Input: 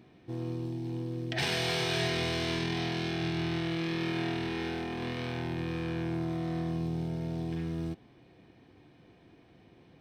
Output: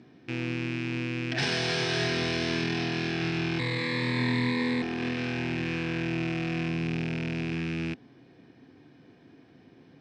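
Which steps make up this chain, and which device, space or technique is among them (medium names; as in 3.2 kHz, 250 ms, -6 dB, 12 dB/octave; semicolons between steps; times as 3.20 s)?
car door speaker with a rattle (rattle on loud lows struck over -41 dBFS, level -26 dBFS; cabinet simulation 88–7900 Hz, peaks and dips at 140 Hz +4 dB, 260 Hz +9 dB, 420 Hz +3 dB, 1.6 kHz +6 dB, 5.2 kHz +6 dB); 3.59–4.82 s: rippled EQ curve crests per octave 1, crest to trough 18 dB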